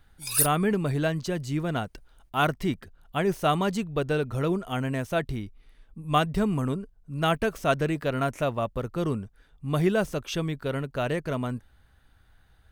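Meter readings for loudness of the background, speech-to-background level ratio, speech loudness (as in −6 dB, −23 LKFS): −25.0 LKFS, −3.0 dB, −28.0 LKFS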